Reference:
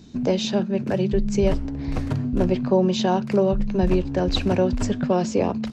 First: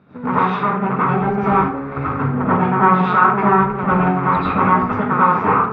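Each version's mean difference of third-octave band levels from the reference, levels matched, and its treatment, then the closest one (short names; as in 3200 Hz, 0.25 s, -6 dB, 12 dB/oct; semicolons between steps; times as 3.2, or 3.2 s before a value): 9.5 dB: minimum comb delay 0.83 ms; speaker cabinet 190–2100 Hz, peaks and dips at 220 Hz -8 dB, 320 Hz -9 dB, 590 Hz -8 dB, 1300 Hz +8 dB; plate-style reverb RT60 0.53 s, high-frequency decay 0.75×, pre-delay 75 ms, DRR -9.5 dB; gain +2 dB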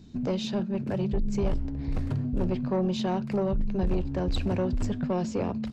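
2.0 dB: low shelf 170 Hz +8.5 dB; soft clip -12.5 dBFS, distortion -14 dB; bell 6100 Hz -3.5 dB 0.3 oct; gain -7.5 dB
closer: second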